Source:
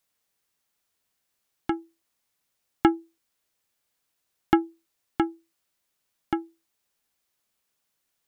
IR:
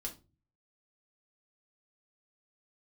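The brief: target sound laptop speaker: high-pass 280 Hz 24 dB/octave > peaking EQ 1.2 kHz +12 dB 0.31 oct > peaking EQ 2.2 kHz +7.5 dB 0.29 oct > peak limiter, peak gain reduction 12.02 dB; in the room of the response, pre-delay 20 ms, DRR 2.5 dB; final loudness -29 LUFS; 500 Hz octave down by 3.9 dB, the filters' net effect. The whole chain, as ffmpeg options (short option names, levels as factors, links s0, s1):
-filter_complex "[0:a]equalizer=f=500:t=o:g=-7,asplit=2[s0][s1];[1:a]atrim=start_sample=2205,adelay=20[s2];[s1][s2]afir=irnorm=-1:irlink=0,volume=0.891[s3];[s0][s3]amix=inputs=2:normalize=0,highpass=f=280:w=0.5412,highpass=f=280:w=1.3066,equalizer=f=1200:t=o:w=0.31:g=12,equalizer=f=2200:t=o:w=0.29:g=7.5,volume=1.78,alimiter=limit=0.266:level=0:latency=1"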